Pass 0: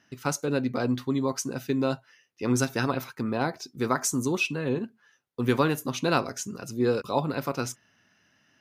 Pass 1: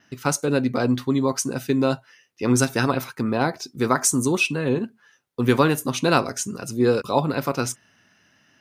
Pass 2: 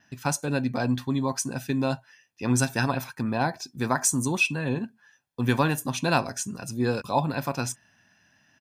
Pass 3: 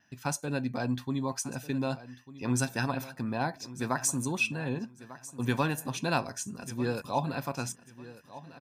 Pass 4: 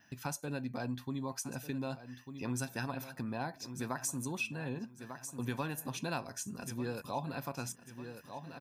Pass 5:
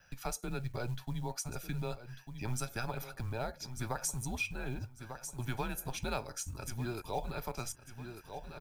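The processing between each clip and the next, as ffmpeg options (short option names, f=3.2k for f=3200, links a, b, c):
-af "adynamicequalizer=threshold=0.00178:dfrequency=8900:dqfactor=3.4:tfrequency=8900:tqfactor=3.4:attack=5:release=100:ratio=0.375:range=4:mode=boostabove:tftype=bell,volume=5.5dB"
-af "aecho=1:1:1.2:0.5,volume=-4.5dB"
-af "aecho=1:1:1196|2392|3588:0.15|0.0389|0.0101,volume=-5.5dB"
-af "acompressor=threshold=-46dB:ratio=2,aexciter=amount=2.1:drive=2.8:freq=11k,volume=3dB"
-af "acrusher=bits=7:mode=log:mix=0:aa=0.000001,afreqshift=-120,volume=1dB"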